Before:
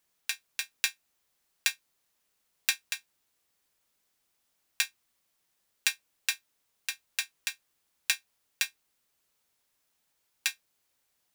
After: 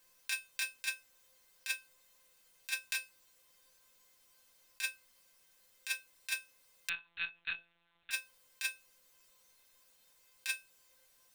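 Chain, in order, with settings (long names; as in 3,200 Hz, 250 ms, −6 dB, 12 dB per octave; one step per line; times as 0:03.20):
compressor whose output falls as the input rises −37 dBFS, ratio −1
tuned comb filter 520 Hz, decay 0.24 s, harmonics all, mix 90%
0:06.89–0:08.11: one-pitch LPC vocoder at 8 kHz 170 Hz
level +15 dB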